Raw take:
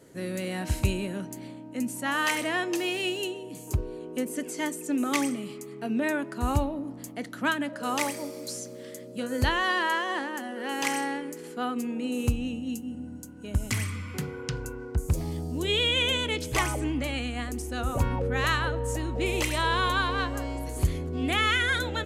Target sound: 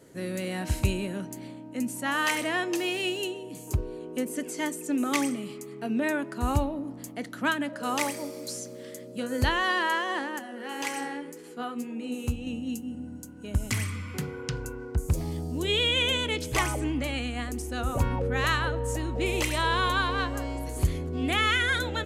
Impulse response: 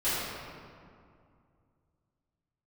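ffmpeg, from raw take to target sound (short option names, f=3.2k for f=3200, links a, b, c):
-filter_complex "[0:a]asettb=1/sr,asplit=3[a][b][c];[a]atrim=end=10.394[d];[b]atrim=start=10.39:end=12.47,asetpts=PTS-STARTPTS,afade=t=in:d=0.004:c=qsin,afade=t=out:st=2.076:d=0.004:c=qsin,flanger=delay=9.1:depth=4.9:regen=39:speed=1.9:shape=sinusoidal[e];[c]atrim=start=12.466[f];[d][e]acrossfade=d=0.004:c1=hsin:c2=qsin[g];[g][f]acrossfade=d=0.004:c1=qsin:c2=hsin"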